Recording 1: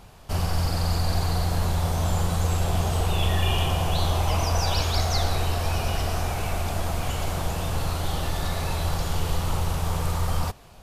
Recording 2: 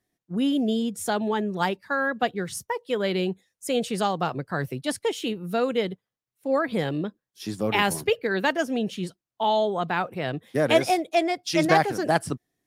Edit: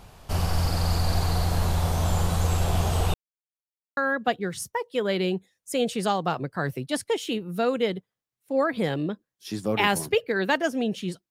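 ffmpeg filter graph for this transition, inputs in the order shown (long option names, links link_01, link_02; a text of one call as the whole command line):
ffmpeg -i cue0.wav -i cue1.wav -filter_complex "[0:a]apad=whole_dur=11.3,atrim=end=11.3,asplit=2[link_01][link_02];[link_01]atrim=end=3.14,asetpts=PTS-STARTPTS,afade=type=out:start_time=3.136:duration=0.004:curve=hsin[link_03];[link_02]atrim=start=3.14:end=3.97,asetpts=PTS-STARTPTS,volume=0[link_04];[1:a]atrim=start=1.92:end=9.25,asetpts=PTS-STARTPTS,afade=type=in:duration=0.004:curve=hsin[link_05];[link_03][link_04][link_05]concat=n=3:v=0:a=1" out.wav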